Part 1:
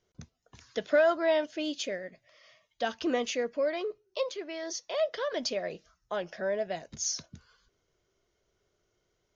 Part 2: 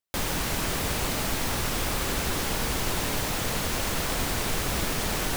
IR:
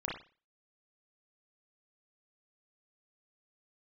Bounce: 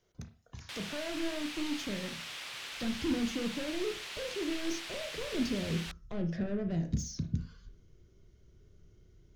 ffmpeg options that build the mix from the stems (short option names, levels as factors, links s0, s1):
-filter_complex "[0:a]acrossover=split=420[s0][s1];[s1]acompressor=threshold=0.00891:ratio=10[s2];[s0][s2]amix=inputs=2:normalize=0,asoftclip=type=tanh:threshold=0.0126,asubboost=boost=11:cutoff=220,volume=0.841,asplit=2[s3][s4];[s4]volume=0.531[s5];[1:a]bandpass=f=3000:t=q:w=1.3:csg=0,adelay=550,volume=0.473[s6];[2:a]atrim=start_sample=2205[s7];[s5][s7]afir=irnorm=-1:irlink=0[s8];[s3][s6][s8]amix=inputs=3:normalize=0"